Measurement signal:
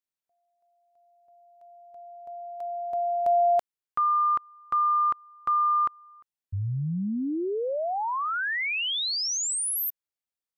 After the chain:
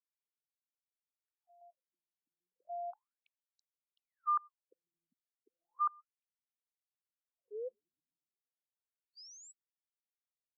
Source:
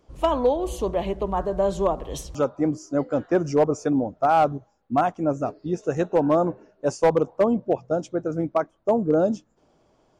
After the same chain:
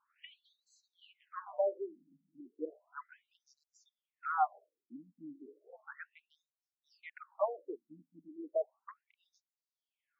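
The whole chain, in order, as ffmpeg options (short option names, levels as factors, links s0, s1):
-filter_complex "[0:a]acrossover=split=480 2300:gain=0.0708 1 0.0794[s0][s1][s2];[s0][s1][s2]amix=inputs=3:normalize=0,afftfilt=real='re*between(b*sr/1024,210*pow(5600/210,0.5+0.5*sin(2*PI*0.34*pts/sr))/1.41,210*pow(5600/210,0.5+0.5*sin(2*PI*0.34*pts/sr))*1.41)':imag='im*between(b*sr/1024,210*pow(5600/210,0.5+0.5*sin(2*PI*0.34*pts/sr))/1.41,210*pow(5600/210,0.5+0.5*sin(2*PI*0.34*pts/sr))*1.41)':win_size=1024:overlap=0.75,volume=0.531"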